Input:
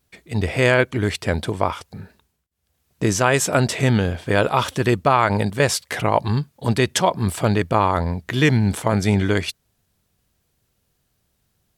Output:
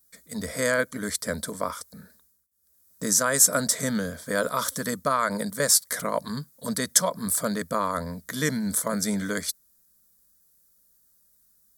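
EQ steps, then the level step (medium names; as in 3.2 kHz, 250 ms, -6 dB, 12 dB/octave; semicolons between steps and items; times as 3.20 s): treble shelf 3.3 kHz +10 dB; treble shelf 7.5 kHz +9.5 dB; static phaser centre 540 Hz, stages 8; -6.0 dB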